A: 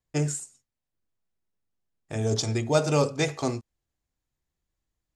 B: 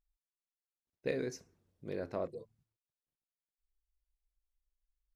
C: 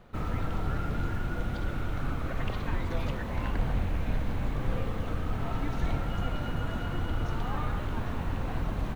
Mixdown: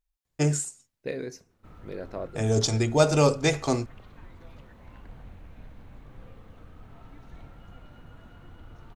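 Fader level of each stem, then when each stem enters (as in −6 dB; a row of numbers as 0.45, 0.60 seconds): +2.5, +2.0, −17.0 decibels; 0.25, 0.00, 1.50 seconds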